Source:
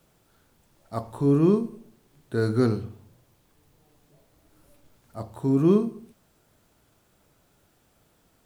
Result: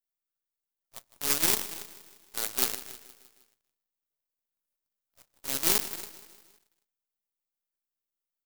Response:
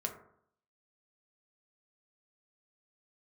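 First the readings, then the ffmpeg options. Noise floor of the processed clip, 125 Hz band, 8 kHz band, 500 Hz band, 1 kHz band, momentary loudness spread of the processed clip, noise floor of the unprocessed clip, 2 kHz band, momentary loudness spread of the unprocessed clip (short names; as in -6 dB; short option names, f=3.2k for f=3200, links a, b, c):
under -85 dBFS, -24.0 dB, n/a, -16.5 dB, -3.5 dB, 20 LU, -65 dBFS, +4.5 dB, 17 LU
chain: -filter_complex "[0:a]adynamicequalizer=threshold=0.02:dfrequency=150:dqfactor=1.2:tfrequency=150:tqfactor=1.2:attack=5:release=100:ratio=0.375:range=2:mode=boostabove:tftype=bell,asplit=2[a][b];[b]adelay=280,lowpass=f=870:p=1,volume=-8dB,asplit=2[c][d];[d]adelay=280,lowpass=f=870:p=1,volume=0.17,asplit=2[e][f];[f]adelay=280,lowpass=f=870:p=1,volume=0.17[g];[c][e][g]amix=inputs=3:normalize=0[h];[a][h]amix=inputs=2:normalize=0,acrusher=bits=3:mode=log:mix=0:aa=0.000001,aemphasis=mode=production:type=riaa,aeval=exprs='1.5*(cos(1*acos(clip(val(0)/1.5,-1,1)))-cos(1*PI/2))+0.188*(cos(4*acos(clip(val(0)/1.5,-1,1)))-cos(4*PI/2))+0.211*(cos(7*acos(clip(val(0)/1.5,-1,1)))-cos(7*PI/2))':c=same,asplit=2[i][j];[j]aecho=0:1:157|314|471|628|785:0.15|0.0808|0.0436|0.0236|0.0127[k];[i][k]amix=inputs=2:normalize=0,volume=-6dB"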